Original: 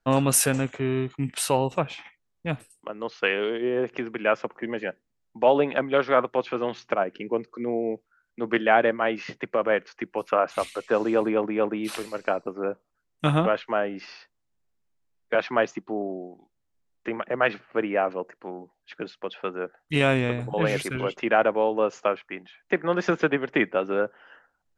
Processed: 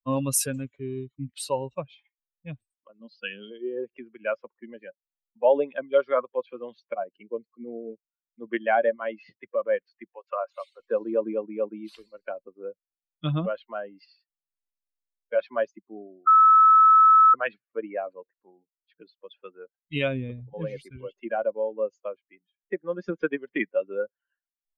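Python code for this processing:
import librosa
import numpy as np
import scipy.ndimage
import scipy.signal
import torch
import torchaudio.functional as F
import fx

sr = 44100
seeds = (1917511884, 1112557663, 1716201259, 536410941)

y = fx.cabinet(x, sr, low_hz=160.0, low_slope=12, high_hz=6700.0, hz=(180.0, 250.0, 440.0, 980.0, 2100.0, 5000.0), db=(10, 6, -9, -10, -9, 8), at=(3.0, 3.51))
y = fx.highpass(y, sr, hz=480.0, slope=12, at=(10.14, 10.8))
y = fx.high_shelf(y, sr, hz=4300.0, db=5.5, at=(13.51, 14.06))
y = fx.peak_eq(y, sr, hz=2100.0, db=-4.0, octaves=2.8, at=(20.08, 23.2))
y = fx.edit(y, sr, fx.bleep(start_s=16.27, length_s=1.07, hz=1300.0, db=-10.0), tone=tone)
y = fx.bin_expand(y, sr, power=2.0)
y = fx.peak_eq(y, sr, hz=560.0, db=8.0, octaves=0.22)
y = y * librosa.db_to_amplitude(-1.5)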